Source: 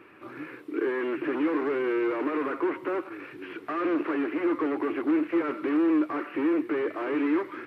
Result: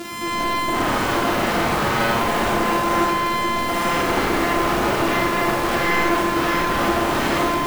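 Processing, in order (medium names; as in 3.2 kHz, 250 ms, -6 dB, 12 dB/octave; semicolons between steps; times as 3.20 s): sorted samples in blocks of 128 samples; high-pass 70 Hz 24 dB/octave; treble shelf 2.9 kHz +5.5 dB; peak limiter -13.5 dBFS, peak gain reduction 6 dB; small resonant body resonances 220/320/1300/2200 Hz, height 8 dB, ringing for 80 ms; sine folder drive 13 dB, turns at -22 dBFS; on a send: repeats whose band climbs or falls 219 ms, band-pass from 190 Hz, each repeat 0.7 oct, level -5 dB; on the sum: Schroeder reverb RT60 1.7 s, combs from 30 ms, DRR -3.5 dB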